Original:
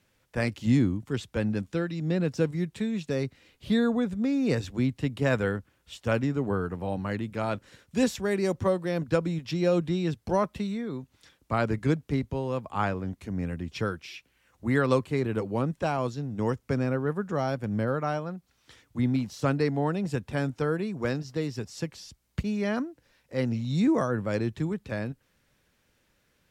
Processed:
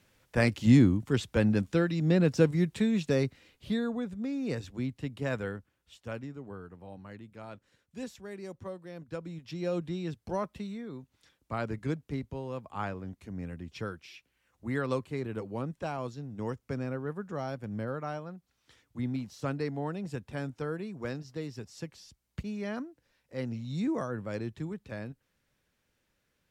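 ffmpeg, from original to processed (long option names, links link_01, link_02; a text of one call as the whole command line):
ffmpeg -i in.wav -af "volume=10.5dB,afade=type=out:start_time=3.09:duration=0.71:silence=0.316228,afade=type=out:start_time=5.33:duration=1.08:silence=0.398107,afade=type=in:start_time=9.05:duration=0.72:silence=0.398107" out.wav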